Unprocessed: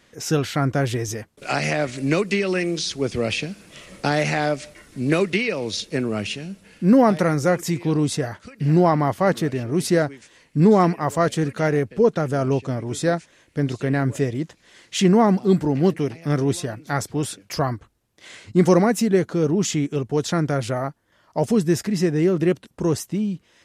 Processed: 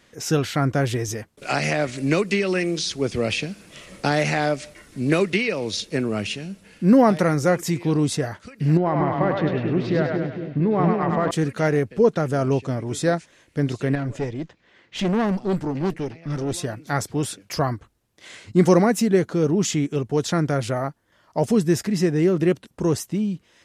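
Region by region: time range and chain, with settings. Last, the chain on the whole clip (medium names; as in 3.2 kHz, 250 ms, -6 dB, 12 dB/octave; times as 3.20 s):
8.77–11.31 s: low-pass 3.4 kHz 24 dB/octave + compression 5:1, threshold -17 dBFS + two-band feedback delay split 460 Hz, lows 229 ms, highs 101 ms, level -3 dB
13.95–16.54 s: high-pass 41 Hz + level-controlled noise filter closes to 2.4 kHz, open at -12 dBFS + valve stage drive 17 dB, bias 0.6
whole clip: none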